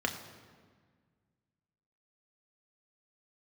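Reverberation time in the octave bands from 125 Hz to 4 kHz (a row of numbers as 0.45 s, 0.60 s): 2.4 s, 2.2 s, 1.7 s, 1.6 s, 1.5 s, 1.2 s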